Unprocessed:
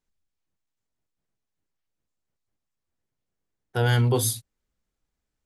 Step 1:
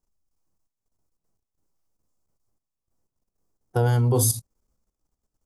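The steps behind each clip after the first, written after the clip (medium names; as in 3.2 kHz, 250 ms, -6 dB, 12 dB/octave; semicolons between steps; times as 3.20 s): harmonic-percussive split harmonic +4 dB; high-order bell 2.5 kHz -11.5 dB; level held to a coarse grid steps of 13 dB; trim +6.5 dB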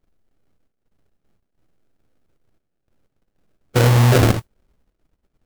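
in parallel at +3 dB: peak limiter -20.5 dBFS, peak gain reduction 11.5 dB; on the sum: sample-rate reducer 1 kHz, jitter 20%; modulation noise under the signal 30 dB; trim +3 dB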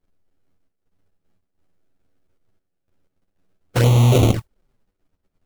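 touch-sensitive flanger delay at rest 11 ms, full sweep at -10 dBFS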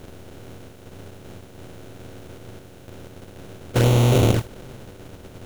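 spectral levelling over time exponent 0.4; trim -4.5 dB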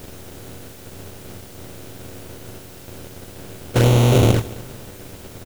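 word length cut 8-bit, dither triangular; delay 220 ms -19.5 dB; trim +2.5 dB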